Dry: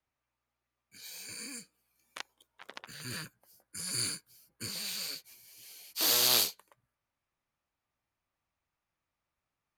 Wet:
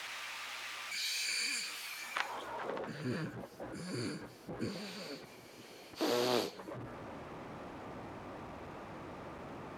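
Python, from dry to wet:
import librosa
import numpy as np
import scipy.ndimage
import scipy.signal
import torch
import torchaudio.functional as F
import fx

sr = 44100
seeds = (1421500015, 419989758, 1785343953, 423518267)

y = x + 0.5 * 10.0 ** (-38.5 / 20.0) * np.sign(x)
y = fx.filter_sweep_bandpass(y, sr, from_hz=2800.0, to_hz=340.0, start_s=1.85, end_s=2.83, q=0.9)
y = y * librosa.db_to_amplitude(7.5)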